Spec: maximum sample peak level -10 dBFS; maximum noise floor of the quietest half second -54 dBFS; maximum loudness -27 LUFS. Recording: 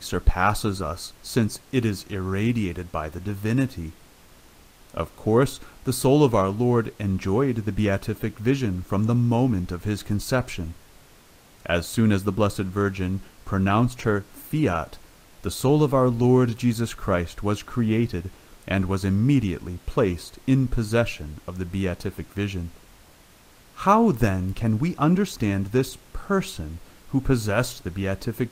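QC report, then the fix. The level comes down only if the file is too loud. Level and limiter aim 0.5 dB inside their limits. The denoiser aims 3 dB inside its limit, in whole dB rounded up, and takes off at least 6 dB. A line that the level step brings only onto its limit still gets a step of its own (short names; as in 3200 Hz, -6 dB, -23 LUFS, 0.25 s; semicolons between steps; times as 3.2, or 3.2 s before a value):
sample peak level -5.5 dBFS: fail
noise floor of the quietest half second -52 dBFS: fail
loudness -24.0 LUFS: fail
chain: gain -3.5 dB; limiter -10.5 dBFS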